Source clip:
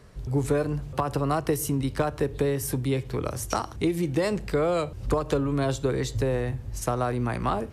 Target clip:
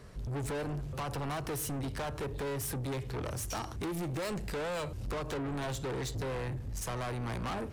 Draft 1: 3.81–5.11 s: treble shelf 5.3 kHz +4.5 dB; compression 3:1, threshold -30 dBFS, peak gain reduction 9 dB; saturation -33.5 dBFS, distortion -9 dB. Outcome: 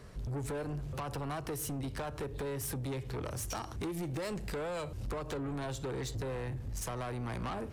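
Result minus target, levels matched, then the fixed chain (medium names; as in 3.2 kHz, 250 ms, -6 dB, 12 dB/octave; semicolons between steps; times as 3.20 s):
compression: peak gain reduction +9 dB
3.81–5.11 s: treble shelf 5.3 kHz +4.5 dB; saturation -33.5 dBFS, distortion -5 dB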